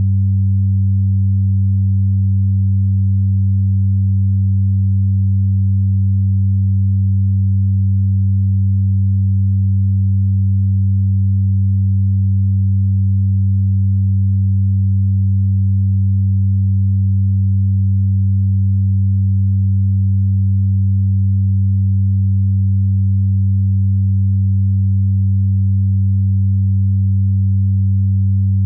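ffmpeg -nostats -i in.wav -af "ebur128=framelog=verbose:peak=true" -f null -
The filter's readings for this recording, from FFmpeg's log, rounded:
Integrated loudness:
  I:         -15.1 LUFS
  Threshold: -25.1 LUFS
Loudness range:
  LRA:         0.0 LU
  Threshold: -35.1 LUFS
  LRA low:   -15.1 LUFS
  LRA high:  -15.1 LUFS
True peak:
  Peak:       -8.2 dBFS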